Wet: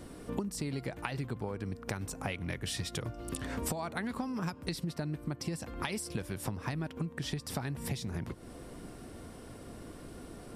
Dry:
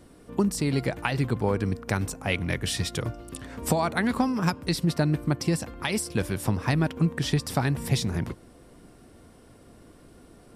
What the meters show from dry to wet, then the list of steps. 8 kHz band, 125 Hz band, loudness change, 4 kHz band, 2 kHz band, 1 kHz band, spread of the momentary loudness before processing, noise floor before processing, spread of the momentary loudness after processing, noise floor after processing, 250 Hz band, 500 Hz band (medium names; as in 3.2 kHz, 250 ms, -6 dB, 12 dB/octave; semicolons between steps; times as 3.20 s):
-7.0 dB, -11.0 dB, -11.0 dB, -9.0 dB, -10.0 dB, -10.0 dB, 7 LU, -53 dBFS, 12 LU, -49 dBFS, -10.5 dB, -10.5 dB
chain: compression 16:1, threshold -37 dBFS, peak gain reduction 19.5 dB; trim +4.5 dB